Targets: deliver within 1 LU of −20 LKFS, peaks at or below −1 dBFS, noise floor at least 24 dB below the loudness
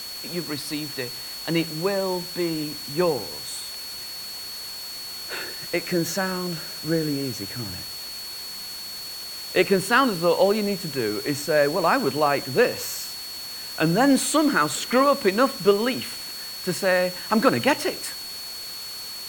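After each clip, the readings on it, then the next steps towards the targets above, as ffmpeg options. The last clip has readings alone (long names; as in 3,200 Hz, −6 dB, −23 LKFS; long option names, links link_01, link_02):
interfering tone 4,400 Hz; level of the tone −34 dBFS; background noise floor −35 dBFS; target noise floor −49 dBFS; integrated loudness −24.5 LKFS; sample peak −5.0 dBFS; target loudness −20.0 LKFS
→ -af "bandreject=frequency=4400:width=30"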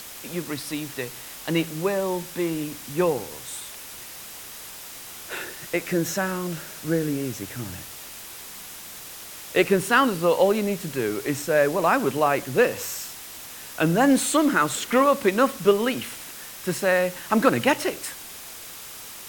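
interfering tone none found; background noise floor −40 dBFS; target noise floor −48 dBFS
→ -af "afftdn=noise_reduction=8:noise_floor=-40"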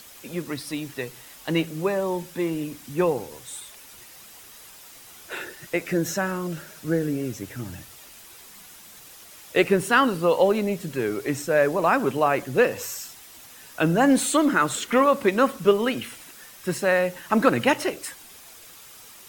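background noise floor −47 dBFS; target noise floor −48 dBFS
→ -af "afftdn=noise_reduction=6:noise_floor=-47"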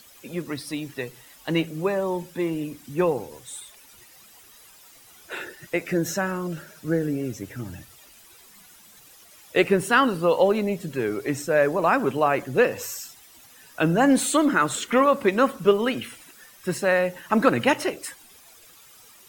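background noise floor −51 dBFS; integrated loudness −23.5 LKFS; sample peak −5.0 dBFS; target loudness −20.0 LKFS
→ -af "volume=3.5dB"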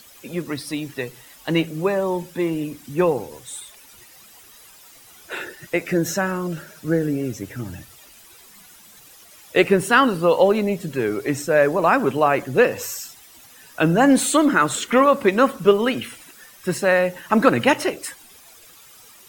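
integrated loudness −20.0 LKFS; sample peak −1.5 dBFS; background noise floor −48 dBFS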